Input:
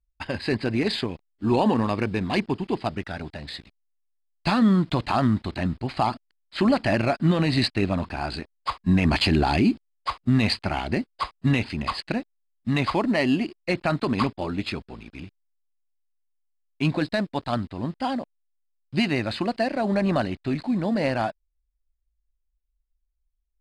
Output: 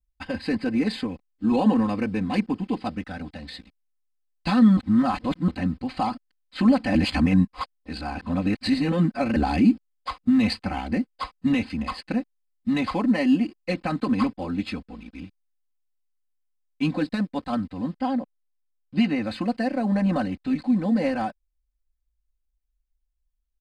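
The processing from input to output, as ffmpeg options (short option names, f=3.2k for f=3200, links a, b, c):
-filter_complex "[0:a]asettb=1/sr,asplit=3[a][b][c];[a]atrim=end=17.954[d];[b]atrim=start=17.95:end=19.22,asetpts=PTS-STARTPTS,afade=t=in:d=0.004:c=qsin,afade=t=out:st=1.266:d=0.004:c=qsin,highshelf=f=3.7k:g=-8.5[e];[c]atrim=start=19.216[f];[d][e]acrossfade=d=0.004:c1=hsin:c2=qsin[g];[g][f]acrossfade=d=0.004:c1=qsin:c2=hsin,asplit=5[h][i][j][k][l];[h]atrim=end=4.772[m];[i]atrim=start=4.768:end=5.482,asetpts=PTS-STARTPTS,areverse[n];[j]atrim=start=5.478:end=6.952[o];[k]atrim=start=6.948:end=9.362,asetpts=PTS-STARTPTS,areverse[p];[l]atrim=start=9.358[q];[m][n]acrossfade=d=0.004:c1=hsin:c2=hsin[r];[r][o]acrossfade=d=0.004:c1=hsin:c2=hsin[s];[s][p]acrossfade=d=0.004:c1=hsin:c2=hsin[t];[t][q]acrossfade=d=0.004:c1=hsin:c2=hsin,equalizer=f=150:w=0.6:g=5.5,aecho=1:1:3.9:0.99,adynamicequalizer=threshold=0.00631:dfrequency=3700:dqfactor=1.7:tfrequency=3700:tqfactor=1.7:attack=5:release=100:ratio=0.375:range=3:mode=cutabove:tftype=bell,volume=-6dB"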